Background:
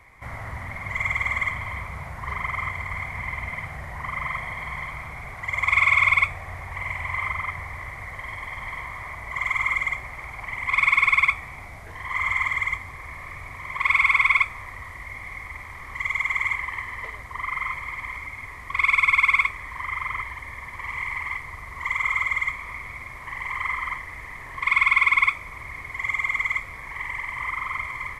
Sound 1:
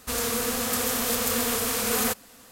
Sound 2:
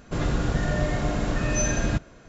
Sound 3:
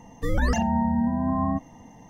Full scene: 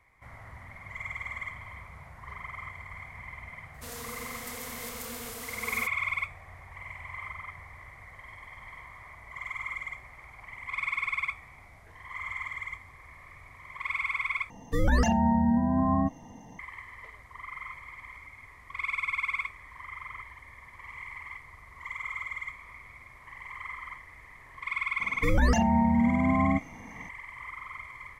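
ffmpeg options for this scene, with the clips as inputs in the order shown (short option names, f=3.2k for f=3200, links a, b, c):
-filter_complex "[3:a]asplit=2[a][b];[0:a]volume=-12.5dB,asplit=2[c][d];[c]atrim=end=14.504[e];[a]atrim=end=2.09,asetpts=PTS-STARTPTS,volume=-0.5dB[f];[d]atrim=start=16.586[g];[1:a]atrim=end=2.51,asetpts=PTS-STARTPTS,volume=-14.5dB,afade=t=in:d=0.004:c=hsin,afade=t=out:st=2.506:d=0.004:c=hsin,adelay=3740[h];[b]atrim=end=2.09,asetpts=PTS-STARTPTS,afade=t=in:d=0.004:c=hsin,afade=t=out:st=2.086:d=0.004:c=hsin,adelay=25000[i];[e][f]acrossfade=d=0.004:c1=hsin:c2=hsin[j];[j][g]acrossfade=d=0.004:c1=hsin:c2=hsin[k];[k][h][i]amix=inputs=3:normalize=0"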